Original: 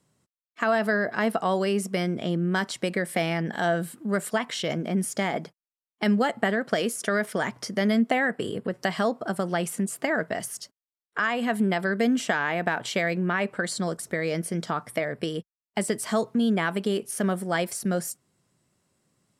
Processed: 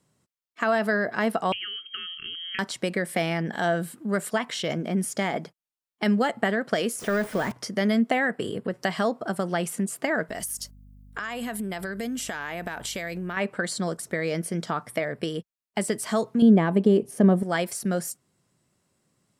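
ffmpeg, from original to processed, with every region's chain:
-filter_complex "[0:a]asettb=1/sr,asplit=3[a][b][c];[a]atrim=end=1.524[d];[b]atrim=start=1.52:end=2.59,asetpts=PTS-STARTPTS,afade=t=in:d=0.004:c=qsin,afade=t=out:st=1.066:d=0.004:c=qsin,acrossover=split=500|1200[e][f][g];[e]acompressor=threshold=-39dB:ratio=4[h];[f]acompressor=threshold=-41dB:ratio=4[i];[g]acompressor=threshold=-38dB:ratio=4[j];[h][i][j]amix=inputs=3:normalize=0,lowpass=f=2.9k:t=q:w=0.5098,lowpass=f=2.9k:t=q:w=0.6013,lowpass=f=2.9k:t=q:w=0.9,lowpass=f=2.9k:t=q:w=2.563,afreqshift=-3400,asuperstop=centerf=730:order=20:qfactor=0.94[k];[c]atrim=start=2.586[l];[d][k]acrossfade=d=0.004:c1=hsin:c2=qsin[m];[m][l]acrossfade=d=0.004:c1=qsin:c2=hsin,asettb=1/sr,asplit=3[n][o][p];[n]atrim=end=6.994[q];[o]atrim=start=6.99:end=7.52,asetpts=PTS-STARTPTS,afade=t=in:d=0.004:c=qsin,afade=t=out:st=0.526:d=0.004:c=qsin,aeval=exprs='val(0)+0.5*0.0335*sgn(val(0))':c=same,deesser=0.75[r];[p]atrim=start=7.516[s];[q][r]acrossfade=d=0.004:c1=hsin:c2=qsin[t];[t][s]acrossfade=d=0.004:c1=qsin:c2=hsin,asettb=1/sr,asplit=3[u][v][w];[u]atrim=end=10.294[x];[v]atrim=start=10.29:end=13.37,asetpts=PTS-STARTPTS,afade=t=in:d=0.004:c=qsin,afade=t=out:st=3.076:d=0.004:c=qsin,aeval=exprs='val(0)+0.00398*(sin(2*PI*50*n/s)+sin(2*PI*2*50*n/s)/2+sin(2*PI*3*50*n/s)/3+sin(2*PI*4*50*n/s)/4+sin(2*PI*5*50*n/s)/5)':c=same,aemphasis=mode=production:type=50fm,acompressor=threshold=-29dB:ratio=4:attack=3.2:release=140:knee=1:detection=peak[y];[w]atrim=start=13.366[z];[x][y]acrossfade=d=0.004:c1=hsin:c2=qsin[aa];[aa][z]acrossfade=d=0.004:c1=qsin:c2=hsin,asettb=1/sr,asplit=3[ab][ac][ad];[ab]atrim=end=16.424[ae];[ac]atrim=start=16.42:end=17.43,asetpts=PTS-STARTPTS,afade=t=in:d=0.004:c=qsin,afade=t=out:st=1.006:d=0.004:c=qsin,tiltshelf=f=1.1k:g=9,bandreject=f=1.4k:w=6.5[af];[ad]atrim=start=17.426[ag];[ae][af]acrossfade=d=0.004:c1=hsin:c2=qsin[ah];[ah][ag]acrossfade=d=0.004:c1=qsin:c2=hsin"

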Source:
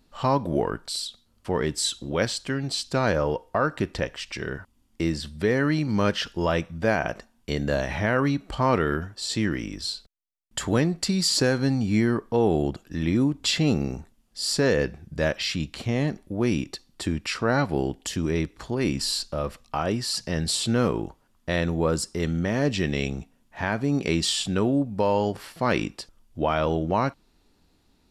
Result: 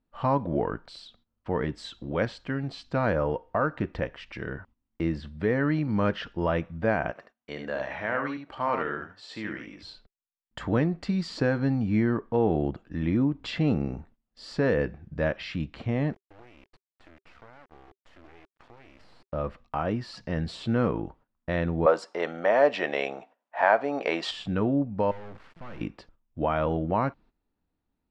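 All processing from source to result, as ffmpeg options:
-filter_complex "[0:a]asettb=1/sr,asplit=3[a][b][c];[a]atrim=end=7.114[d];[b]atrim=start=7.11:end=9.83,asetpts=PTS-STARTPTS,afade=t=in:d=0.004:c=qsin,afade=t=out:st=2.716:d=0.004:c=qsin,highpass=f=720:p=1,aecho=1:1:74:0.501,atrim=end_sample=119952[e];[c]atrim=start=9.826[f];[d][e]acrossfade=d=0.004:c1=hsin:c2=qsin[g];[g][f]acrossfade=d=0.004:c1=qsin:c2=hsin,asettb=1/sr,asplit=3[h][i][j];[h]atrim=end=16.134[k];[i]atrim=start=16.13:end=19.33,asetpts=PTS-STARTPTS,afade=t=in:d=0.004:c=qsin,afade=t=out:st=3.196:d=0.004:c=qsin,highpass=490,acompressor=threshold=-41dB:ratio=10:attack=3.2:release=140:knee=1:detection=peak,acrusher=bits=5:dc=4:mix=0:aa=0.000001[l];[j]atrim=start=19.326[m];[k][l]acrossfade=d=0.004:c1=hsin:c2=qsin[n];[n][m]acrossfade=d=0.004:c1=qsin:c2=hsin,asettb=1/sr,asplit=3[o][p][q];[o]atrim=end=21.864[r];[p]atrim=start=21.86:end=24.31,asetpts=PTS-STARTPTS,afade=t=in:d=0.004:c=qsin,afade=t=out:st=2.446:d=0.004:c=qsin,acontrast=59,highpass=f=640:t=q:w=2.3[s];[q]atrim=start=24.306[t];[r][s]acrossfade=d=0.004:c1=hsin:c2=qsin[u];[u][t]acrossfade=d=0.004:c1=qsin:c2=hsin,asettb=1/sr,asplit=3[v][w][x];[v]atrim=end=25.114[y];[w]atrim=start=25.11:end=25.81,asetpts=PTS-STARTPTS,afade=t=in:d=0.004:c=qsin,afade=t=out:st=0.696:d=0.004:c=qsin,asubboost=boost=8.5:cutoff=170,aeval=exprs='(tanh(28.2*val(0)+0.25)-tanh(0.25))/28.2':c=same,acrusher=bits=5:dc=4:mix=0:aa=0.000001[z];[x]atrim=start=25.806[aa];[y][z]acrossfade=d=0.004:c1=hsin:c2=qsin[ab];[ab][aa]acrossfade=d=0.004:c1=qsin:c2=hsin,agate=range=-14dB:threshold=-50dB:ratio=16:detection=peak,lowpass=2.1k,bandreject=f=390:w=12,volume=-2dB"

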